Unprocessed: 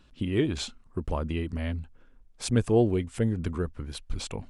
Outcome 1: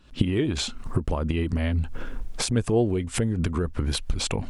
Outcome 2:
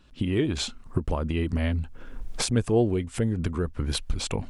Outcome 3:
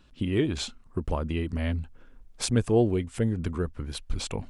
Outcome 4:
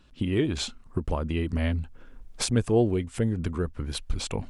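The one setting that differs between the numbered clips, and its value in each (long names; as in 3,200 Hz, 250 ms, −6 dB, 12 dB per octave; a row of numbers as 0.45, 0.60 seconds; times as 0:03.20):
camcorder AGC, rising by: 88, 34, 5.4, 14 dB per second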